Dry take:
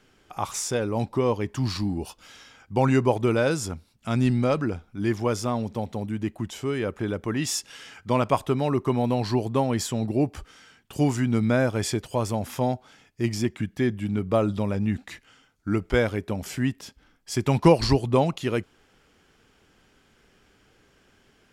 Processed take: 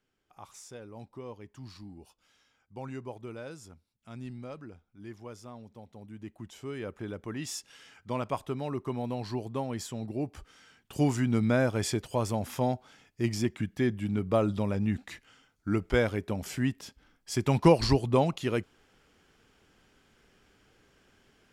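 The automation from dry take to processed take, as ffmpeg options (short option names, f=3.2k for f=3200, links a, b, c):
-af "volume=-3.5dB,afade=t=in:st=5.88:d=0.96:silence=0.334965,afade=t=in:st=10.22:d=0.75:silence=0.473151"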